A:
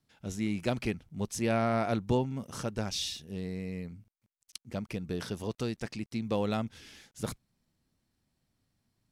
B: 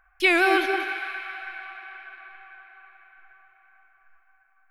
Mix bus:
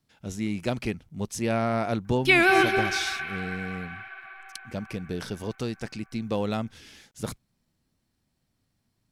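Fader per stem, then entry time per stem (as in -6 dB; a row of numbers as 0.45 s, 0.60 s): +2.5 dB, +0.5 dB; 0.00 s, 2.05 s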